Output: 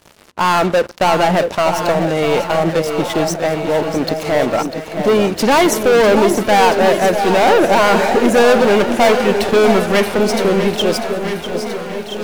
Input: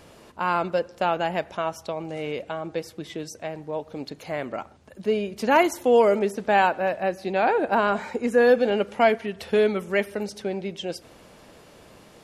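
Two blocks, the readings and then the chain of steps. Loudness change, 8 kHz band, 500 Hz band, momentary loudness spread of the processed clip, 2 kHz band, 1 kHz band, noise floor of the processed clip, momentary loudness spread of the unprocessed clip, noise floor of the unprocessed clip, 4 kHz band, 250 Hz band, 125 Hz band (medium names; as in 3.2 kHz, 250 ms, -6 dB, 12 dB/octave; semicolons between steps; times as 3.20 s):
+10.0 dB, +17.5 dB, +10.0 dB, 8 LU, +10.0 dB, +10.0 dB, -30 dBFS, 15 LU, -51 dBFS, +15.5 dB, +12.5 dB, +14.5 dB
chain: waveshaping leveller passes 5; echo whose repeats swap between lows and highs 663 ms, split 860 Hz, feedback 71%, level -7.5 dB; bit-crushed delay 646 ms, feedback 55%, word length 7-bit, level -10.5 dB; trim -2 dB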